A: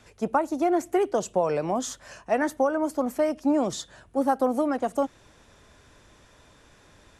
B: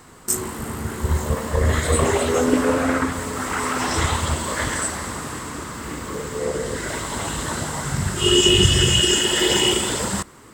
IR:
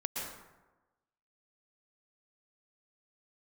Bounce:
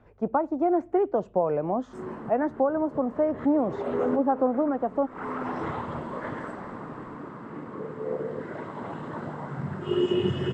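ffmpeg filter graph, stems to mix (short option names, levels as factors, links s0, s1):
-filter_complex "[0:a]volume=1,asplit=2[s0][s1];[1:a]highpass=f=130:w=0.5412,highpass=f=130:w=1.3066,adelay=1650,volume=0.531[s2];[s1]apad=whole_len=537473[s3];[s2][s3]sidechaincompress=threshold=0.0178:ratio=10:attack=16:release=203[s4];[s0][s4]amix=inputs=2:normalize=0,lowpass=1100"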